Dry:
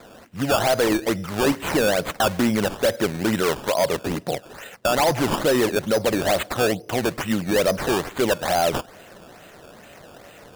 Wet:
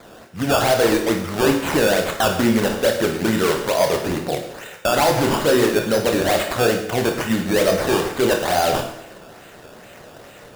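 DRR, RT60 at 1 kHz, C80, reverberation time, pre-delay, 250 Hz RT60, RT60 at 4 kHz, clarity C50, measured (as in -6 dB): 2.5 dB, 0.75 s, 9.0 dB, 0.75 s, 25 ms, 0.75 s, 0.75 s, 6.0 dB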